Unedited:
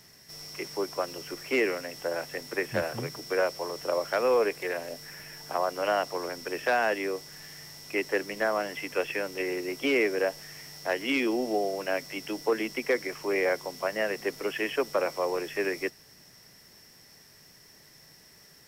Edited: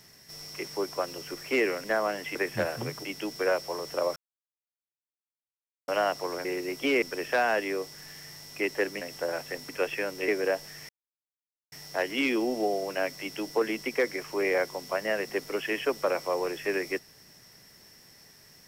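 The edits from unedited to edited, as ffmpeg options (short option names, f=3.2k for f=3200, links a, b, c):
-filter_complex "[0:a]asplit=13[a][b][c][d][e][f][g][h][i][j][k][l][m];[a]atrim=end=1.842[n];[b]atrim=start=8.348:end=8.862[o];[c]atrim=start=2.518:end=3.222[p];[d]atrim=start=12.118:end=12.382[q];[e]atrim=start=3.218:end=4.07,asetpts=PTS-STARTPTS,afade=t=out:st=0.848:d=0.004:c=hsin[r];[f]atrim=start=4.07:end=5.79,asetpts=PTS-STARTPTS,volume=0[s];[g]atrim=start=5.79:end=6.362,asetpts=PTS-STARTPTS,afade=t=in:d=0.004:c=hsin[t];[h]atrim=start=9.448:end=10.022[u];[i]atrim=start=6.358:end=8.352[v];[j]atrim=start=1.838:end=2.522[w];[k]atrim=start=8.858:end=9.452[x];[l]atrim=start=10.018:end=10.63,asetpts=PTS-STARTPTS,afade=t=out:st=0.608:d=0.004:c=hsin,apad=pad_dur=0.83[y];[m]atrim=start=10.63,asetpts=PTS-STARTPTS,afade=t=in:d=0.004:c=hsin[z];[n][o]acrossfade=d=0.004:c1=hsin:c2=hsin[aa];[aa][p]acrossfade=d=0.004:c1=hsin:c2=hsin[ab];[ab][q]acrossfade=d=0.004:c1=hsin:c2=hsin[ac];[r][s][t]concat=n=3:v=0:a=1[ad];[ac][ad]acrossfade=d=0.004:c1=hsin:c2=hsin[ae];[ae][u]acrossfade=d=0.004:c1=hsin:c2=hsin[af];[af][v]acrossfade=d=0.004:c1=hsin:c2=hsin[ag];[ag][w]acrossfade=d=0.004:c1=hsin:c2=hsin[ah];[ah][x]acrossfade=d=0.004:c1=hsin:c2=hsin[ai];[y][z]concat=n=2:v=0:a=1[aj];[ai][aj]acrossfade=d=0.004:c1=hsin:c2=hsin"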